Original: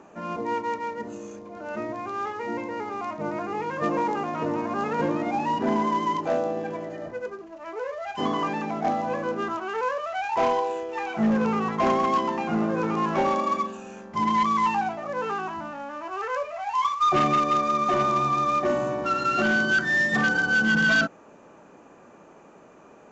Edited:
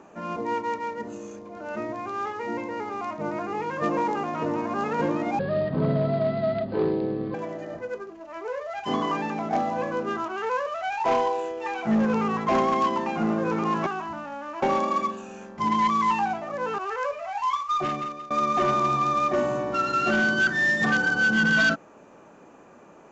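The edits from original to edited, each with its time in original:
5.39–6.66 speed 65%
15.34–16.1 move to 13.18
16.64–17.62 fade out, to -22.5 dB

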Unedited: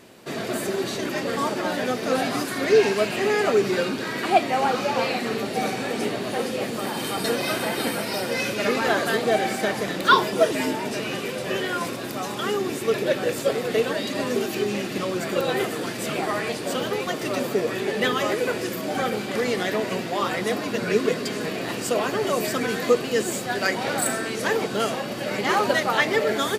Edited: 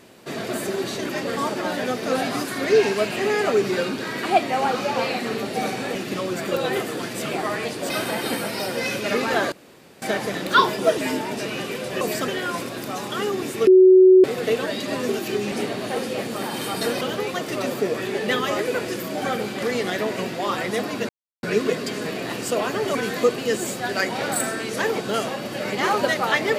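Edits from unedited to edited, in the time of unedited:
5.95–7.44 swap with 14.79–16.74
9.06–9.56 room tone
12.94–13.51 bleep 373 Hz -7.5 dBFS
20.82 insert silence 0.34 s
22.34–22.61 move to 11.55

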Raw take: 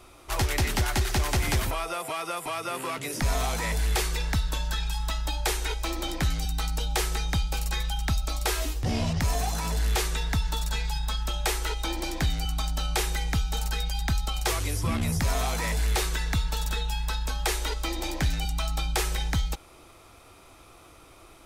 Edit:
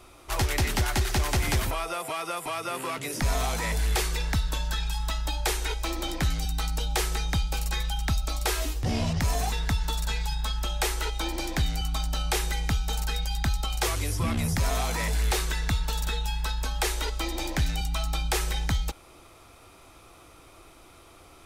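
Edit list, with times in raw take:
9.52–10.16 cut

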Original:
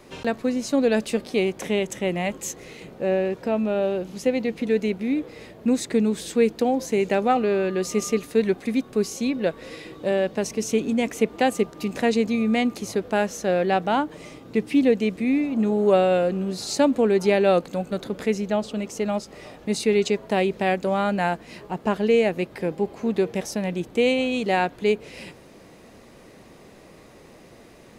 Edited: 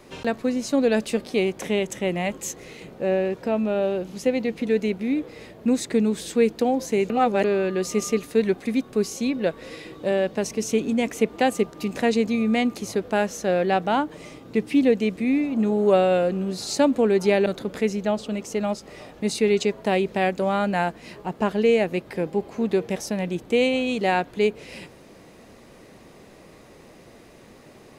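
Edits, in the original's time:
7.1–7.44 reverse
17.46–17.91 cut

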